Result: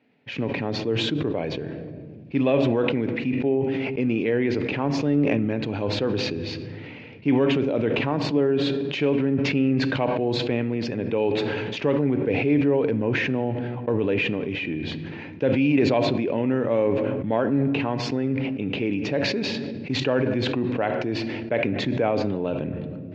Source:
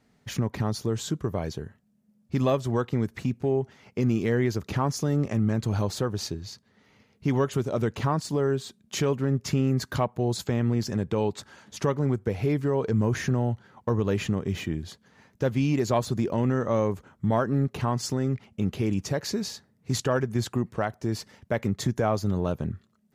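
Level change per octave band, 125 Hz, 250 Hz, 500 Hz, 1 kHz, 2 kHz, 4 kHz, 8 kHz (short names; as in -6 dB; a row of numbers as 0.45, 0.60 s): -2.0 dB, +5.0 dB, +5.0 dB, +1.0 dB, +8.5 dB, +6.5 dB, n/a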